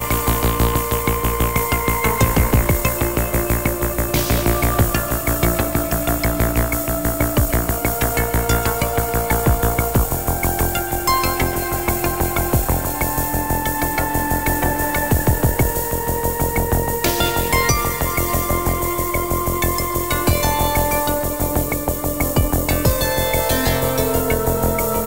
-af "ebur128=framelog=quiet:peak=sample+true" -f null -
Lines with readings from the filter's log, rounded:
Integrated loudness:
  I:         -18.6 LUFS
  Threshold: -28.5 LUFS
Loudness range:
  LRA:         1.0 LU
  Threshold: -38.6 LUFS
  LRA low:   -19.0 LUFS
  LRA high:  -18.0 LUFS
Sample peak:
  Peak:       -1.8 dBFS
True peak:
  Peak:       -1.8 dBFS